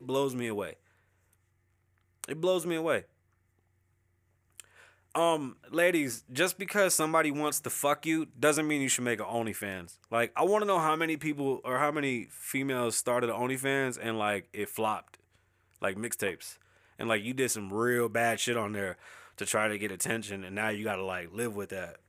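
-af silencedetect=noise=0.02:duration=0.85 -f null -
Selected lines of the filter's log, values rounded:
silence_start: 0.70
silence_end: 2.24 | silence_duration: 1.54
silence_start: 2.99
silence_end: 4.60 | silence_duration: 1.60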